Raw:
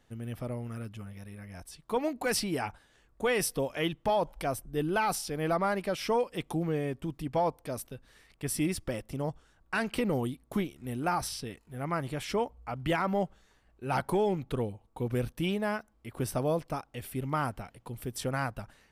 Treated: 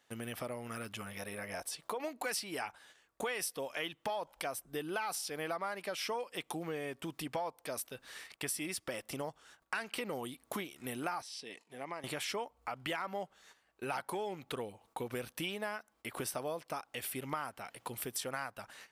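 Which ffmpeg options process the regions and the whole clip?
ffmpeg -i in.wav -filter_complex "[0:a]asettb=1/sr,asplit=3[link_01][link_02][link_03];[link_01]atrim=end=1.194[link_04];[link_02]atrim=start=1.19:end=2,asetpts=PTS-STARTPTS,afade=type=in:duration=0.004:curve=qsin,afade=type=out:start_time=0.806:duration=0.004:curve=qsin,equalizer=frequency=550:width_type=o:width=1.1:gain=8,acompressor=threshold=-32dB:ratio=2.5:attack=3.2:release=140:knee=1:detection=peak[link_05];[link_03]atrim=start=1.996[link_06];[link_04][link_05]acrossfade=duration=0.004:curve1=hsin:curve2=qsin[link_07];[link_07][link_06]acrossfade=duration=0.004:curve1=qsin:curve2=hsin,asettb=1/sr,asplit=3[link_08][link_09][link_10];[link_08]atrim=end=11.224[link_11];[link_09]atrim=start=11.22:end=12.04,asetpts=PTS-STARTPTS,afade=type=in:duration=0.004:curve=qsin,afade=type=out:start_time=0.816:duration=0.004:curve=qsin,equalizer=frequency=1400:width_type=o:width=0.37:gain=-12,acompressor=threshold=-57dB:ratio=1.5:attack=3.2:release=140:knee=1:detection=peak,highpass=200,lowpass=7300[link_12];[link_10]atrim=start=12.036[link_13];[link_11][link_12]acrossfade=duration=0.004:curve1=hsin:curve2=qsin[link_14];[link_14][link_13]acrossfade=duration=0.004:curve1=qsin:curve2=hsin,agate=range=-12dB:threshold=-60dB:ratio=16:detection=peak,highpass=frequency=990:poles=1,acompressor=threshold=-51dB:ratio=4,volume=12.5dB" out.wav

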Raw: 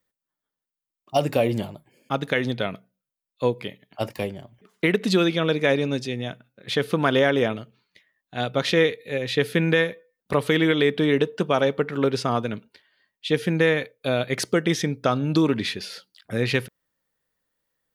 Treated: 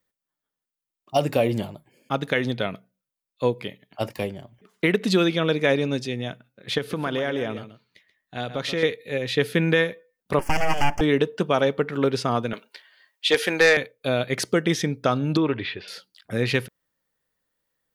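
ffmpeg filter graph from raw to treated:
ffmpeg -i in.wav -filter_complex "[0:a]asettb=1/sr,asplit=3[link_01][link_02][link_03];[link_01]atrim=end=6.784[link_04];[link_02]atrim=start=6.78:end=8.83,asetpts=PTS-STARTPTS,afade=type=in:duration=0.004:curve=qsin,afade=type=out:start_time=2.046:duration=0.004:curve=qsin,acompressor=threshold=-27dB:ratio=2:attack=3.2:release=140:knee=1:detection=peak,aecho=1:1:132:0.251,atrim=end_sample=90405[link_05];[link_03]atrim=start=8.826[link_06];[link_04][link_05]acrossfade=duration=0.004:curve1=hsin:curve2=qsin[link_07];[link_07][link_06]acrossfade=duration=0.004:curve1=qsin:curve2=hsin,asettb=1/sr,asplit=3[link_08][link_09][link_10];[link_08]atrim=end=10.394[link_11];[link_09]atrim=start=10.39:end=11.01,asetpts=PTS-STARTPTS,afade=type=in:duration=0.004:curve=qsin,afade=type=out:start_time=0.616:duration=0.004:curve=qsin,aecho=1:1:2.5:0.49,atrim=end_sample=27342,aeval=exprs='abs(val(0))':channel_layout=same,asuperstop=centerf=3800:order=4:qfactor=1.8[link_12];[link_10]atrim=start=11.006[link_13];[link_11][link_12]acrossfade=duration=0.004:curve1=hsin:curve2=qsin[link_14];[link_14][link_13]acrossfade=duration=0.004:curve1=qsin:curve2=hsin,asettb=1/sr,asplit=3[link_15][link_16][link_17];[link_15]atrim=end=12.534[link_18];[link_16]atrim=start=12.53:end=13.77,asetpts=PTS-STARTPTS,afade=type=in:duration=0.004:curve=qsin,afade=type=out:start_time=1.236:duration=0.004:curve=qsin,highpass=590,aeval=exprs='0.335*sin(PI/2*1.78*val(0)/0.335)':channel_layout=same[link_19];[link_17]atrim=start=13.766[link_20];[link_18][link_19]acrossfade=duration=0.004:curve1=hsin:curve2=qsin[link_21];[link_21][link_20]acrossfade=duration=0.004:curve1=qsin:curve2=hsin,asettb=1/sr,asplit=3[link_22][link_23][link_24];[link_22]atrim=end=15.374[link_25];[link_23]atrim=start=15.37:end=15.88,asetpts=PTS-STARTPTS,afade=type=in:duration=0.004:curve=qsin,afade=type=out:start_time=0.506:duration=0.004:curve=qsin,lowpass=frequency=3300:width=0.5412,lowpass=frequency=3300:width=1.3066,equalizer=frequency=210:width=2.5:gain=-11.5[link_26];[link_24]atrim=start=15.876[link_27];[link_25][link_26]acrossfade=duration=0.004:curve1=hsin:curve2=qsin[link_28];[link_28][link_27]acrossfade=duration=0.004:curve1=qsin:curve2=hsin" out.wav

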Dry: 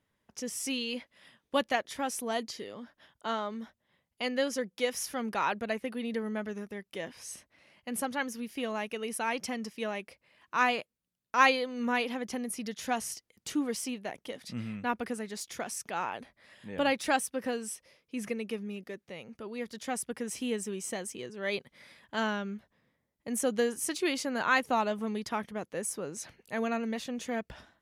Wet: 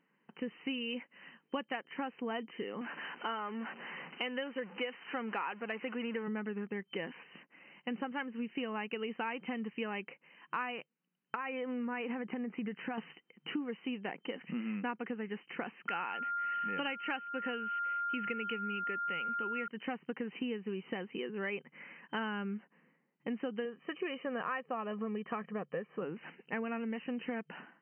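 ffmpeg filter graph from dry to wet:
ffmpeg -i in.wav -filter_complex "[0:a]asettb=1/sr,asplit=3[link_01][link_02][link_03];[link_01]atrim=end=2.814[link_04];[link_02]atrim=start=2.81:end=6.28,asetpts=PTS-STARTPTS,afade=type=in:duration=0.004:curve=qsin,afade=type=out:start_time=3.466:duration=0.004:curve=qsin,aeval=exprs='val(0)+0.5*0.00891*sgn(val(0))':channel_layout=same,highpass=frequency=420:poles=1[link_05];[link_03]atrim=start=6.276[link_06];[link_04][link_05]acrossfade=duration=0.004:curve1=hsin:curve2=qsin[link_07];[link_07][link_06]acrossfade=duration=0.004:curve1=qsin:curve2=hsin,asettb=1/sr,asplit=3[link_08][link_09][link_10];[link_08]atrim=end=11.354[link_11];[link_09]atrim=start=11.35:end=12.98,asetpts=PTS-STARTPTS,afade=type=in:duration=0.004:curve=qsin,afade=type=out:start_time=1.626:duration=0.004:curve=qsin,lowpass=frequency=2500:width=0.5412,lowpass=frequency=2500:width=1.3066,acompressor=threshold=-35dB:ratio=6:attack=3.2:release=140:knee=1:detection=peak[link_12];[link_10]atrim=start=12.976[link_13];[link_11][link_12]acrossfade=duration=0.004:curve1=hsin:curve2=qsin[link_14];[link_14][link_13]acrossfade=duration=0.004:curve1=qsin:curve2=hsin,asettb=1/sr,asplit=3[link_15][link_16][link_17];[link_15]atrim=end=15.884[link_18];[link_16]atrim=start=15.88:end=19.68,asetpts=PTS-STARTPTS,afade=type=in:duration=0.004:curve=qsin,afade=type=out:start_time=3.796:duration=0.004:curve=qsin,highpass=48,equalizer=frequency=5500:width=0.39:gain=11.5,aeval=exprs='val(0)+0.0224*sin(2*PI*1400*n/s)':channel_layout=same[link_19];[link_17]atrim=start=19.676[link_20];[link_18][link_19]acrossfade=duration=0.004:curve1=hsin:curve2=qsin[link_21];[link_21][link_20]acrossfade=duration=0.004:curve1=qsin:curve2=hsin,asettb=1/sr,asplit=3[link_22][link_23][link_24];[link_22]atrim=end=23.654[link_25];[link_23]atrim=start=23.65:end=26.02,asetpts=PTS-STARTPTS,afade=type=in:duration=0.004:curve=qsin,afade=type=out:start_time=2.366:duration=0.004:curve=qsin,highshelf=frequency=2800:gain=-12,aecho=1:1:1.7:0.57,atrim=end_sample=104517[link_26];[link_24]atrim=start=26.016[link_27];[link_25][link_26]acrossfade=duration=0.004:curve1=hsin:curve2=qsin[link_28];[link_28][link_27]acrossfade=duration=0.004:curve1=qsin:curve2=hsin,afftfilt=real='re*between(b*sr/4096,150,3100)':imag='im*between(b*sr/4096,150,3100)':win_size=4096:overlap=0.75,equalizer=frequency=620:width_type=o:width=0.22:gain=-12.5,acompressor=threshold=-39dB:ratio=10,volume=5dB" out.wav

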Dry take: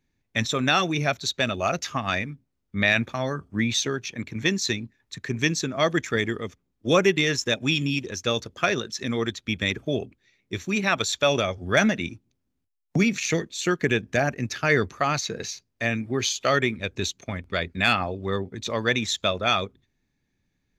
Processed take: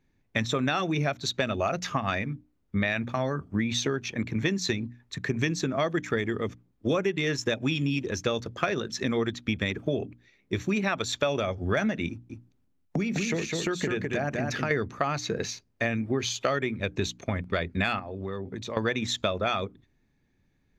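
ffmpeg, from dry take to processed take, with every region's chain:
ffmpeg -i in.wav -filter_complex "[0:a]asettb=1/sr,asplit=3[link_01][link_02][link_03];[link_01]atrim=end=12.094[link_04];[link_02]atrim=start=12.09:end=14.71,asetpts=PTS-STARTPTS,afade=type=in:duration=0.004:curve=qsin,afade=type=out:start_time=2.616:duration=0.004:curve=qsin,acompressor=threshold=-29dB:ratio=3:attack=3.2:release=140:knee=1:detection=peak,aecho=1:1:205:0.631,atrim=end_sample=115542[link_05];[link_03]atrim=start=14.706[link_06];[link_04][link_05]acrossfade=duration=0.004:curve1=hsin:curve2=qsin[link_07];[link_07][link_06]acrossfade=duration=0.004:curve1=qsin:curve2=hsin,asettb=1/sr,asplit=3[link_08][link_09][link_10];[link_08]atrim=end=17.994[link_11];[link_09]atrim=start=17.99:end=18.77,asetpts=PTS-STARTPTS,afade=type=in:duration=0.004:curve=qsin,afade=type=out:start_time=0.776:duration=0.004:curve=qsin,highpass=62,acompressor=threshold=-35dB:ratio=6:attack=3.2:release=140:knee=1:detection=peak[link_12];[link_10]atrim=start=18.766[link_13];[link_11][link_12]acrossfade=duration=0.004:curve1=hsin:curve2=qsin[link_14];[link_14][link_13]acrossfade=duration=0.004:curve1=qsin:curve2=hsin,highshelf=frequency=2800:gain=-9.5,bandreject=frequency=60:width_type=h:width=6,bandreject=frequency=120:width_type=h:width=6,bandreject=frequency=180:width_type=h:width=6,bandreject=frequency=240:width_type=h:width=6,bandreject=frequency=300:width_type=h:width=6,acompressor=threshold=-29dB:ratio=6,volume=5.5dB" out.wav

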